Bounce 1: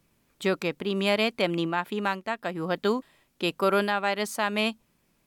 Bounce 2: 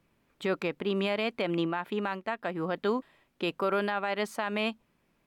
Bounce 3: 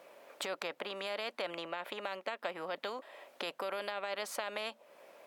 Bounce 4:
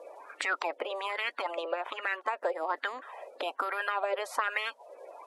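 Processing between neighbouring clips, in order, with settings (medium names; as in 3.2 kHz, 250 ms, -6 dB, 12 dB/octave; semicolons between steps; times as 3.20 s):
tone controls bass -3 dB, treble -11 dB; peak limiter -19.5 dBFS, peak gain reduction 7 dB
compression 2.5:1, threshold -44 dBFS, peak gain reduction 13 dB; resonant high-pass 570 Hz, resonance Q 6.3; spectrum-flattening compressor 2:1; trim +1.5 dB
coarse spectral quantiser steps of 30 dB; brick-wall FIR band-pass 250–12000 Hz; sweeping bell 1.2 Hz 500–1900 Hz +16 dB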